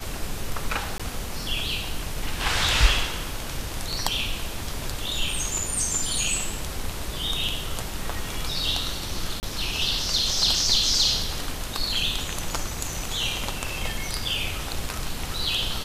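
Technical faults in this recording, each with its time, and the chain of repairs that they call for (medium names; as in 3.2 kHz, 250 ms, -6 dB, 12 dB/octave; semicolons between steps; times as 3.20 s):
0.98–1.00 s: dropout 16 ms
9.40–9.43 s: dropout 29 ms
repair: interpolate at 0.98 s, 16 ms; interpolate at 9.40 s, 29 ms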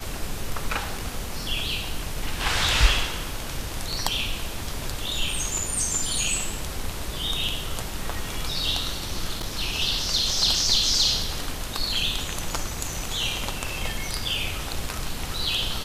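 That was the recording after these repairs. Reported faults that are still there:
nothing left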